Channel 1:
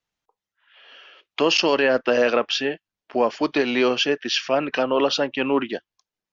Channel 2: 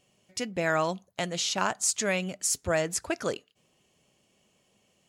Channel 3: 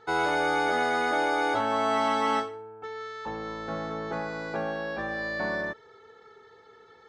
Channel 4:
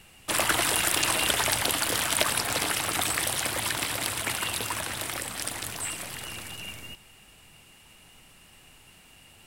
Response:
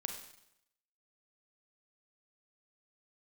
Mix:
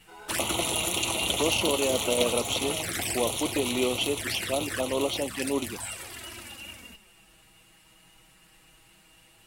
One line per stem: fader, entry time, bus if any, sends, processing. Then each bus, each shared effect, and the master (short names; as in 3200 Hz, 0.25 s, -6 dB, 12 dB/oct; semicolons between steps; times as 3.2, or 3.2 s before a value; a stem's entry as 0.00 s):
-6.5 dB, 0.00 s, no send, dry
-11.0 dB, 0.00 s, no send, dry
-16.0 dB, 0.00 s, no send, chorus 3 Hz
+1.0 dB, 0.00 s, no send, bell 330 Hz +2.5 dB 0.35 oct; notch comb 150 Hz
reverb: off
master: envelope flanger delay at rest 7.2 ms, full sweep at -23 dBFS